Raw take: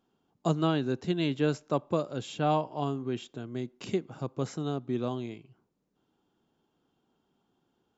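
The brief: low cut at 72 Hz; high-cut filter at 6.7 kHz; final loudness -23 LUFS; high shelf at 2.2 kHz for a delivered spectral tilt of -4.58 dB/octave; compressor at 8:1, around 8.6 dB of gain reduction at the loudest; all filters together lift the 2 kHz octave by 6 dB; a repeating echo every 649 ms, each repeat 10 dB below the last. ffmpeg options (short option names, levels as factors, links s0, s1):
-af "highpass=72,lowpass=6700,equalizer=f=2000:t=o:g=4,highshelf=f=2200:g=7.5,acompressor=threshold=0.0355:ratio=8,aecho=1:1:649|1298|1947|2596:0.316|0.101|0.0324|0.0104,volume=4.47"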